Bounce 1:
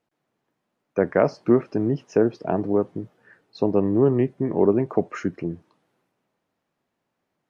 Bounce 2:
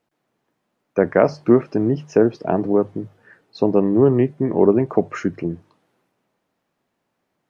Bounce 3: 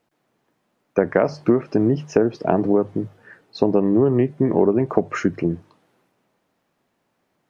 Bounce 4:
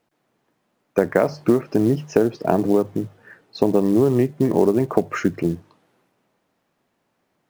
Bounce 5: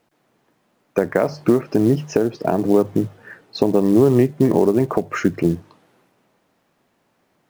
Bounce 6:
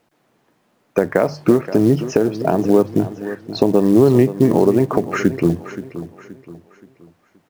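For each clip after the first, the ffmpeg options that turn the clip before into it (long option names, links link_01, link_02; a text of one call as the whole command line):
ffmpeg -i in.wav -af "bandreject=frequency=50:width_type=h:width=6,bandreject=frequency=100:width_type=h:width=6,bandreject=frequency=150:width_type=h:width=6,volume=4dB" out.wav
ffmpeg -i in.wav -af "acompressor=threshold=-16dB:ratio=6,volume=3.5dB" out.wav
ffmpeg -i in.wav -af "acrusher=bits=7:mode=log:mix=0:aa=0.000001" out.wav
ffmpeg -i in.wav -af "alimiter=limit=-9.5dB:level=0:latency=1:release=490,volume=5.5dB" out.wav
ffmpeg -i in.wav -af "aecho=1:1:525|1050|1575|2100:0.211|0.0803|0.0305|0.0116,volume=2dB" out.wav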